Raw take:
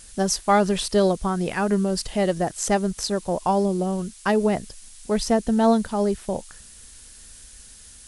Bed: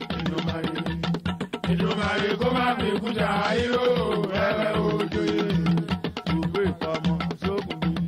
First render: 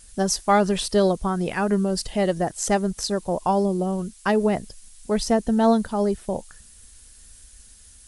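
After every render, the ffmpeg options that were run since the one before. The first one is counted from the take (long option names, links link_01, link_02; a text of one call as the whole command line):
ffmpeg -i in.wav -af "afftdn=noise_reduction=6:noise_floor=-46" out.wav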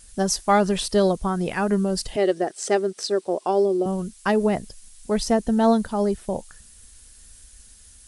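ffmpeg -i in.wav -filter_complex "[0:a]asettb=1/sr,asplit=3[link_01][link_02][link_03];[link_01]atrim=end=2.164[link_04];[link_02]atrim=start=2.16:end=3.86,asetpts=PTS-STARTPTS,afade=type=in:duration=0.004:curve=qsin,afade=type=out:start_time=1.696:duration=0.004:curve=qsin,highpass=340,equalizer=frequency=380:width_type=q:width=4:gain=9,equalizer=frequency=950:width_type=q:width=4:gain=-7,equalizer=frequency=6800:width_type=q:width=4:gain=-6,lowpass=frequency=8800:width=0.5412,lowpass=frequency=8800:width=1.3066[link_05];[link_03]atrim=start=3.856[link_06];[link_04][link_05]acrossfade=duration=0.004:curve1=hsin:curve2=qsin[link_07];[link_07][link_06]acrossfade=duration=0.004:curve1=qsin:curve2=hsin" out.wav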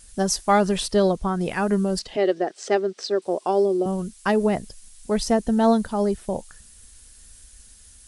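ffmpeg -i in.wav -filter_complex "[0:a]asettb=1/sr,asplit=3[link_01][link_02][link_03];[link_01]atrim=end=0.874[link_04];[link_02]atrim=start=0.87:end=1.41,asetpts=PTS-STARTPTS,afade=type=in:duration=0.004:curve=qsin,afade=type=out:start_time=0.536:duration=0.004:curve=qsin,highshelf=frequency=9700:gain=-12[link_05];[link_03]atrim=start=1.406[link_06];[link_04][link_05]acrossfade=duration=0.004:curve1=hsin:curve2=qsin[link_07];[link_07][link_06]acrossfade=duration=0.004:curve1=qsin:curve2=hsin,asettb=1/sr,asplit=3[link_08][link_09][link_10];[link_08]atrim=end=1.994[link_11];[link_09]atrim=start=1.99:end=3.22,asetpts=PTS-STARTPTS,afade=type=in:duration=0.004:curve=qsin,afade=type=out:start_time=1.226:duration=0.004:curve=qsin,acrossover=split=160 6200:gain=0.2 1 0.0891[link_12][link_13][link_14];[link_12][link_13][link_14]amix=inputs=3:normalize=0[link_15];[link_10]atrim=start=3.216[link_16];[link_11][link_15]acrossfade=duration=0.004:curve1=hsin:curve2=qsin[link_17];[link_17][link_16]acrossfade=duration=0.004:curve1=qsin:curve2=hsin" out.wav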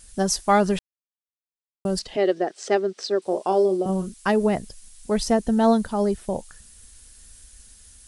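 ffmpeg -i in.wav -filter_complex "[0:a]asettb=1/sr,asplit=3[link_01][link_02][link_03];[link_01]atrim=end=3.224[link_04];[link_02]atrim=start=3.22:end=4.14,asetpts=PTS-STARTPTS,afade=type=in:duration=0.004:curve=qsin,afade=type=out:start_time=0.916:duration=0.004:curve=qsin,asplit=2[link_05][link_06];[link_06]adelay=37,volume=-10dB[link_07];[link_05][link_07]amix=inputs=2:normalize=0,atrim=end_sample=40572[link_08];[link_03]atrim=start=4.136[link_09];[link_04][link_08]acrossfade=duration=0.004:curve1=hsin:curve2=qsin[link_10];[link_10][link_09]acrossfade=duration=0.004:curve1=qsin:curve2=hsin,asplit=3[link_11][link_12][link_13];[link_11]atrim=end=0.79,asetpts=PTS-STARTPTS,afade=type=out:start_time=0.786:duration=0.004:curve=hsin[link_14];[link_12]atrim=start=0.79:end=1.85,asetpts=PTS-STARTPTS,volume=0[link_15];[link_13]atrim=start=1.85,asetpts=PTS-STARTPTS,afade=type=in:duration=0.004:curve=hsin[link_16];[link_14][link_15][link_16]concat=n=3:v=0:a=1" out.wav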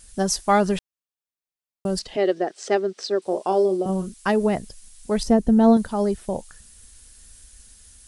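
ffmpeg -i in.wav -filter_complex "[0:a]asettb=1/sr,asplit=3[link_01][link_02][link_03];[link_01]atrim=end=5.234[link_04];[link_02]atrim=start=5.23:end=5.77,asetpts=PTS-STARTPTS,afade=type=in:duration=0.004:curve=qsin,afade=type=out:start_time=0.536:duration=0.004:curve=qsin,tiltshelf=frequency=660:gain=6[link_05];[link_03]atrim=start=5.766[link_06];[link_04][link_05]acrossfade=duration=0.004:curve1=hsin:curve2=qsin[link_07];[link_07][link_06]acrossfade=duration=0.004:curve1=qsin:curve2=hsin" out.wav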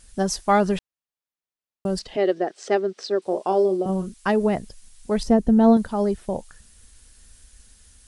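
ffmpeg -i in.wav -af "highshelf=frequency=5600:gain=-7" out.wav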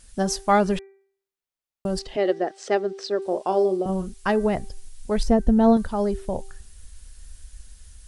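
ffmpeg -i in.wav -af "bandreject=frequency=390.4:width_type=h:width=4,bandreject=frequency=780.8:width_type=h:width=4,bandreject=frequency=1171.2:width_type=h:width=4,bandreject=frequency=1561.6:width_type=h:width=4,bandreject=frequency=1952:width_type=h:width=4,bandreject=frequency=2342.4:width_type=h:width=4,asubboost=boost=3:cutoff=100" out.wav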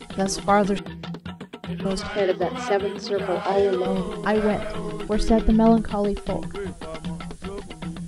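ffmpeg -i in.wav -i bed.wav -filter_complex "[1:a]volume=-7.5dB[link_01];[0:a][link_01]amix=inputs=2:normalize=0" out.wav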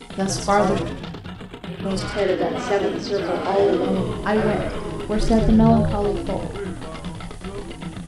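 ffmpeg -i in.wav -filter_complex "[0:a]asplit=2[link_01][link_02];[link_02]adelay=32,volume=-6dB[link_03];[link_01][link_03]amix=inputs=2:normalize=0,asplit=7[link_04][link_05][link_06][link_07][link_08][link_09][link_10];[link_05]adelay=103,afreqshift=-67,volume=-7dB[link_11];[link_06]adelay=206,afreqshift=-134,volume=-13dB[link_12];[link_07]adelay=309,afreqshift=-201,volume=-19dB[link_13];[link_08]adelay=412,afreqshift=-268,volume=-25.1dB[link_14];[link_09]adelay=515,afreqshift=-335,volume=-31.1dB[link_15];[link_10]adelay=618,afreqshift=-402,volume=-37.1dB[link_16];[link_04][link_11][link_12][link_13][link_14][link_15][link_16]amix=inputs=7:normalize=0" out.wav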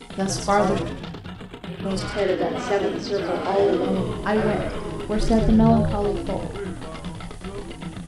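ffmpeg -i in.wav -af "volume=-1.5dB" out.wav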